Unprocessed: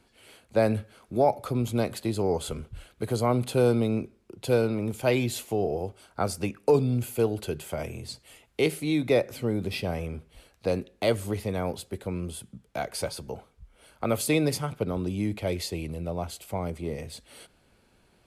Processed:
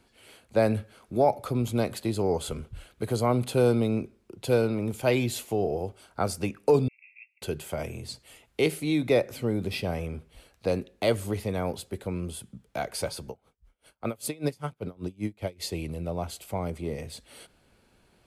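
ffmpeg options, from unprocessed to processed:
ffmpeg -i in.wav -filter_complex "[0:a]asettb=1/sr,asplit=3[link_01][link_02][link_03];[link_01]atrim=end=6.884[link_04];[link_02]atrim=start=6.88:end=7.42,asetpts=PTS-STARTPTS,afade=type=in:duration=0.004:curve=qsin,afade=type=out:start_time=0.536:duration=0.004:curve=qsin,asuperpass=centerf=2300:order=20:qfactor=3[link_05];[link_03]atrim=start=7.416[link_06];[link_04][link_05]acrossfade=duration=0.004:curve1=hsin:curve2=qsin[link_07];[link_07][link_06]acrossfade=duration=0.004:curve1=qsin:curve2=hsin,asettb=1/sr,asplit=3[link_08][link_09][link_10];[link_08]atrim=end=13.294[link_11];[link_09]atrim=start=13.29:end=15.64,asetpts=PTS-STARTPTS,afade=type=in:duration=0.004:curve=qsin,afade=type=out:start_time=2.346:duration=0.004:curve=qsin,aeval=exprs='val(0)*pow(10,-28*(0.5-0.5*cos(2*PI*5.1*n/s))/20)':channel_layout=same[link_12];[link_10]atrim=start=15.636[link_13];[link_11][link_12]acrossfade=duration=0.004:curve1=hsin:curve2=qsin[link_14];[link_14][link_13]acrossfade=duration=0.004:curve1=qsin:curve2=hsin" out.wav

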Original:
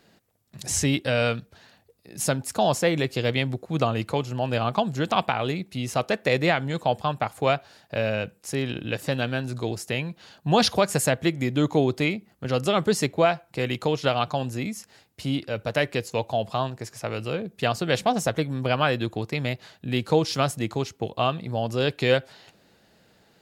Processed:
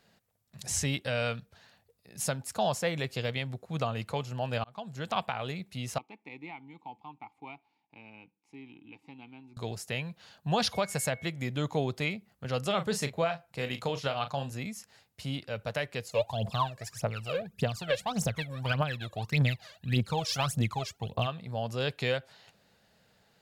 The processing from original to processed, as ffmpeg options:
ffmpeg -i in.wav -filter_complex "[0:a]asettb=1/sr,asplit=3[link_01][link_02][link_03];[link_01]atrim=end=5.984[link_04];[link_02]atrim=start=5.98:end=9.57,asetpts=PTS-STARTPTS,afade=type=in:duration=0.004:curve=qsin,afade=type=out:start_time=3.586:duration=0.004:curve=qsin,asplit=3[link_05][link_06][link_07];[link_05]bandpass=frequency=300:width_type=q:width=8,volume=0dB[link_08];[link_06]bandpass=frequency=870:width_type=q:width=8,volume=-6dB[link_09];[link_07]bandpass=frequency=2240:width_type=q:width=8,volume=-9dB[link_10];[link_08][link_09][link_10]amix=inputs=3:normalize=0[link_11];[link_03]atrim=start=9.566[link_12];[link_04][link_11]acrossfade=duration=0.004:curve1=hsin:curve2=qsin[link_13];[link_13][link_12]acrossfade=duration=0.004:curve1=qsin:curve2=hsin,asettb=1/sr,asplit=3[link_14][link_15][link_16];[link_14]atrim=end=10.734[link_17];[link_15]atrim=start=10.73:end=11.27,asetpts=PTS-STARTPTS,afade=type=in:duration=0.004:curve=qsin,afade=type=out:start_time=0.536:duration=0.004:curve=qsin,aeval=exprs='val(0)+0.01*sin(2*PI*2200*n/s)':channel_layout=same[link_18];[link_16]atrim=start=11.266[link_19];[link_17][link_18]acrossfade=duration=0.004:curve1=hsin:curve2=qsin[link_20];[link_20][link_19]acrossfade=duration=0.004:curve1=qsin:curve2=hsin,asettb=1/sr,asplit=3[link_21][link_22][link_23];[link_21]atrim=end=12.674[link_24];[link_22]atrim=start=12.67:end=14.52,asetpts=PTS-STARTPTS,afade=type=in:duration=0.004:curve=qsin,afade=type=out:start_time=1.846:duration=0.004:curve=qsin,asplit=2[link_25][link_26];[link_26]adelay=36,volume=-10dB[link_27];[link_25][link_27]amix=inputs=2:normalize=0,atrim=end_sample=81585[link_28];[link_23]atrim=start=14.516[link_29];[link_24][link_28]acrossfade=duration=0.004:curve1=hsin:curve2=qsin[link_30];[link_30][link_29]acrossfade=duration=0.004:curve1=qsin:curve2=hsin,asplit=3[link_31][link_32][link_33];[link_31]afade=type=out:start_time=16.08:duration=0.02[link_34];[link_32]aphaser=in_gain=1:out_gain=1:delay=1.9:decay=0.79:speed=1.7:type=triangular,afade=type=in:start_time=16.08:duration=0.02,afade=type=out:start_time=21.26:duration=0.02[link_35];[link_33]afade=type=in:start_time=21.26:duration=0.02[link_36];[link_34][link_35][link_36]amix=inputs=3:normalize=0,asplit=2[link_37][link_38];[link_37]atrim=end=4.64,asetpts=PTS-STARTPTS,afade=type=out:start_time=4.636:duration=0.004:curve=hsin[link_39];[link_38]atrim=start=4.64,asetpts=PTS-STARTPTS,afade=type=in:duration=0.57[link_40];[link_39][link_40]concat=n=2:v=0:a=1,equalizer=frequency=320:width=2.2:gain=-9.5,alimiter=limit=-12dB:level=0:latency=1:release=370,volume=-5.5dB" out.wav

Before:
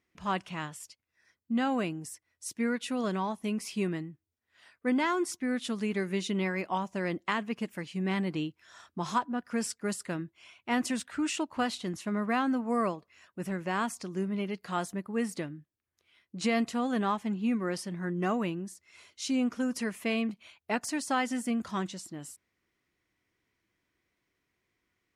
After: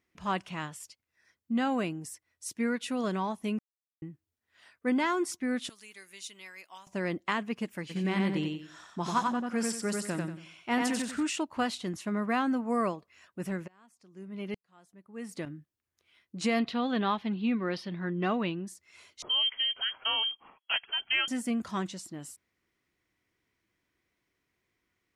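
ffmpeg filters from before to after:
ffmpeg -i in.wav -filter_complex "[0:a]asettb=1/sr,asplit=3[link_01][link_02][link_03];[link_01]atrim=end=5.694[link_04];[link_02]atrim=start=5.69:end=6.87,asetpts=PTS-STARTPTS,afade=type=in:duration=0.004:curve=qsin,afade=type=out:start_time=1.176:duration=0.004:curve=qsin,aderivative[link_05];[link_03]atrim=start=6.866[link_06];[link_04][link_05]acrossfade=duration=0.004:curve1=hsin:curve2=qsin[link_07];[link_07][link_06]acrossfade=duration=0.004:curve1=qsin:curve2=hsin,asplit=3[link_08][link_09][link_10];[link_08]afade=type=out:start_time=7.89:duration=0.02[link_11];[link_09]aecho=1:1:92|184|276|368:0.708|0.212|0.0637|0.0191,afade=type=in:start_time=7.89:duration=0.02,afade=type=out:start_time=11.22:duration=0.02[link_12];[link_10]afade=type=in:start_time=11.22:duration=0.02[link_13];[link_11][link_12][link_13]amix=inputs=3:normalize=0,asplit=3[link_14][link_15][link_16];[link_14]afade=type=out:start_time=13.66:duration=0.02[link_17];[link_15]aeval=exprs='val(0)*pow(10,-37*if(lt(mod(-1.1*n/s,1),2*abs(-1.1)/1000),1-mod(-1.1*n/s,1)/(2*abs(-1.1)/1000),(mod(-1.1*n/s,1)-2*abs(-1.1)/1000)/(1-2*abs(-1.1)/1000))/20)':channel_layout=same,afade=type=in:start_time=13.66:duration=0.02,afade=type=out:start_time=15.45:duration=0.02[link_18];[link_16]afade=type=in:start_time=15.45:duration=0.02[link_19];[link_17][link_18][link_19]amix=inputs=3:normalize=0,asettb=1/sr,asplit=3[link_20][link_21][link_22];[link_20]atrim=end=16.594[link_23];[link_21]atrim=start=16.59:end=18.67,asetpts=PTS-STARTPTS,afade=type=in:duration=0.004:curve=qsin,afade=type=out:start_time=2.076:duration=0.004:curve=qsin,highshelf=frequency=5600:width_type=q:width=3:gain=-13.5[link_24];[link_22]atrim=start=18.666[link_25];[link_23][link_24]acrossfade=duration=0.004:curve1=hsin:curve2=qsin[link_26];[link_26][link_25]acrossfade=duration=0.004:curve1=qsin:curve2=hsin,asettb=1/sr,asplit=3[link_27][link_28][link_29];[link_27]atrim=end=19.224[link_30];[link_28]atrim=start=19.22:end=21.28,asetpts=PTS-STARTPTS,afade=type=in:duration=0.004:curve=qsin,afade=type=out:start_time=2.056:duration=0.004:curve=qsin,lowpass=frequency=2900:width_type=q:width=0.5098,lowpass=frequency=2900:width_type=q:width=0.6013,lowpass=frequency=2900:width_type=q:width=0.9,lowpass=frequency=2900:width_type=q:width=2.563,afreqshift=-3400[link_31];[link_29]atrim=start=21.276[link_32];[link_30][link_31]acrossfade=duration=0.004:curve1=hsin:curve2=qsin[link_33];[link_33][link_32]acrossfade=duration=0.004:curve1=qsin:curve2=hsin,asplit=3[link_34][link_35][link_36];[link_34]atrim=end=3.59,asetpts=PTS-STARTPTS,afade=type=out:start_time=3.586:duration=0.004:curve=hsin[link_37];[link_35]atrim=start=3.59:end=4.02,asetpts=PTS-STARTPTS,volume=0[link_38];[link_36]atrim=start=4.02,asetpts=PTS-STARTPTS,afade=type=in:duration=0.004:curve=hsin[link_39];[link_37][link_38][link_39]concat=n=3:v=0:a=1" out.wav

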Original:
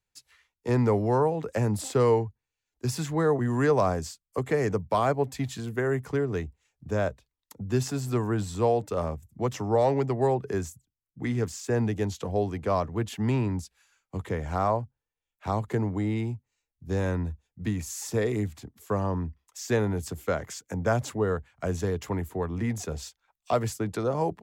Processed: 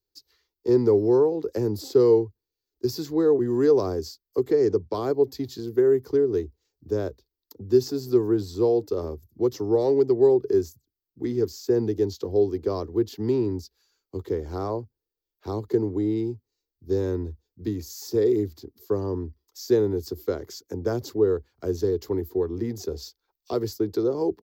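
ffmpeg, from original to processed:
ffmpeg -i in.wav -filter_complex "[0:a]asettb=1/sr,asplit=3[link_01][link_02][link_03];[link_01]atrim=end=4.514[link_04];[link_02]atrim=start=4.51:end=4.94,asetpts=PTS-STARTPTS,afade=type=in:duration=0.004:curve=qsin,afade=type=out:start_time=0.426:duration=0.004:curve=qsin,lowpass=frequency=7400:width=0.5412,lowpass=frequency=7400:width=1.3066[link_05];[link_03]atrim=start=4.936[link_06];[link_04][link_05]acrossfade=duration=0.004:curve1=hsin:curve2=qsin[link_07];[link_07][link_06]acrossfade=duration=0.004:curve1=qsin:curve2=hsin,firequalizer=gain_entry='entry(100,0);entry(150,-8);entry(370,14);entry(610,-6);entry(890,-5);entry(1600,-8);entry(2500,-11);entry(4600,8);entry(9400,-17);entry(13000,9)':delay=0.05:min_phase=1,volume=-2dB" out.wav

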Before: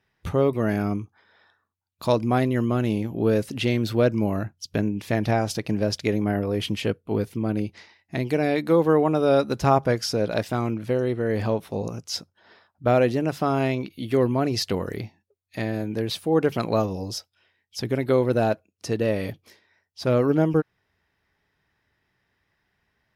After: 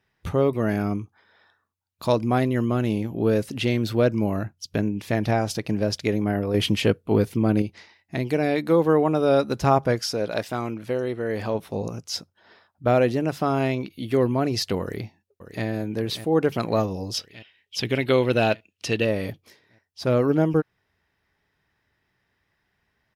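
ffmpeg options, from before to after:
ffmpeg -i in.wav -filter_complex "[0:a]asettb=1/sr,asplit=3[link_01][link_02][link_03];[link_01]atrim=end=6.544[link_04];[link_02]atrim=start=6.54:end=7.62,asetpts=PTS-STARTPTS,afade=type=in:duration=0.004:curve=qsin,afade=type=out:start_time=1.076:duration=0.004:curve=qsin,acontrast=25[link_05];[link_03]atrim=start=7.616[link_06];[link_04][link_05]acrossfade=duration=0.004:curve1=hsin:curve2=qsin[link_07];[link_07][link_06]acrossfade=duration=0.004:curve1=qsin:curve2=hsin,asettb=1/sr,asplit=3[link_08][link_09][link_10];[link_08]atrim=end=9.994[link_11];[link_09]atrim=start=9.99:end=11.55,asetpts=PTS-STARTPTS,afade=type=in:duration=0.004:curve=qsin,afade=type=out:start_time=1.556:duration=0.004:curve=qsin,lowshelf=frequency=260:gain=-7.5[link_12];[link_10]atrim=start=11.546[link_13];[link_11][link_12]acrossfade=duration=0.004:curve1=hsin:curve2=qsin[link_14];[link_14][link_13]acrossfade=duration=0.004:curve1=qsin:curve2=hsin,asplit=2[link_15][link_16];[link_16]afade=type=in:start_time=14.81:duration=0.01,afade=type=out:start_time=15.65:duration=0.01,aecho=0:1:590|1180|1770|2360|2950|3540|4130|4720:0.251189|0.163273|0.106127|0.0689827|0.0448387|0.0291452|0.0189444|0.0123138[link_17];[link_15][link_17]amix=inputs=2:normalize=0,asettb=1/sr,asplit=3[link_18][link_19][link_20];[link_18]atrim=end=17.144[link_21];[link_19]atrim=start=17.14:end=19.05,asetpts=PTS-STARTPTS,afade=type=in:duration=0.004:curve=qsin,afade=type=out:start_time=1.906:duration=0.004:curve=qsin,equalizer=frequency=2900:width=1.3:gain=15[link_22];[link_20]atrim=start=19.046[link_23];[link_21][link_22]acrossfade=duration=0.004:curve1=hsin:curve2=qsin[link_24];[link_24][link_23]acrossfade=duration=0.004:curve1=qsin:curve2=hsin" out.wav

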